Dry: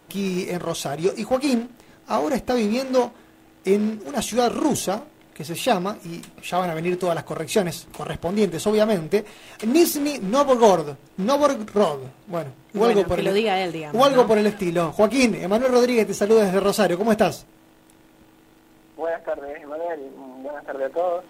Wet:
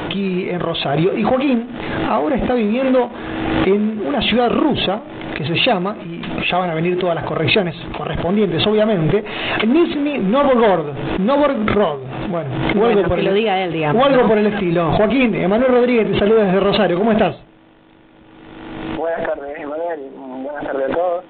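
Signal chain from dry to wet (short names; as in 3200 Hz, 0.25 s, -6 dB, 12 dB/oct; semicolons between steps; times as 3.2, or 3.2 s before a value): added harmonics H 5 -13 dB, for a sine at -2.5 dBFS; downsampling 8000 Hz; backwards sustainer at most 33 dB/s; gain -1.5 dB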